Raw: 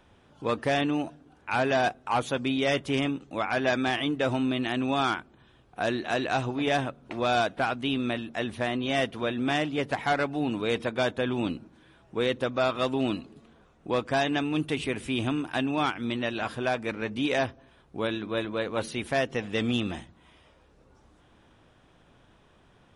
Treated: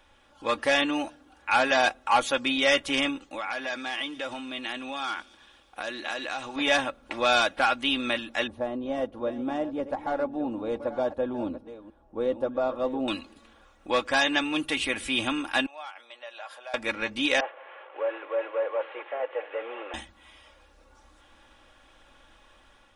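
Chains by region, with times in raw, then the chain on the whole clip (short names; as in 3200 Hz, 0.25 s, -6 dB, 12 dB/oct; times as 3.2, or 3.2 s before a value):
3.26–6.56 compressor 10:1, threshold -31 dBFS + low shelf 120 Hz -8.5 dB + thin delay 0.115 s, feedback 70%, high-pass 4600 Hz, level -12.5 dB
8.47–13.08 reverse delay 0.686 s, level -13 dB + EQ curve 530 Hz 0 dB, 910 Hz -5 dB, 2100 Hz -23 dB
15.66–16.74 compressor 5:1, threshold -34 dBFS + ladder high-pass 550 Hz, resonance 50%
17.4–19.94 delta modulation 16 kbps, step -41.5 dBFS + steep high-pass 420 Hz 48 dB/oct + tilt -4 dB/oct
whole clip: bell 170 Hz -14 dB 3 oct; comb 3.6 ms, depth 59%; AGC gain up to 3.5 dB; gain +2.5 dB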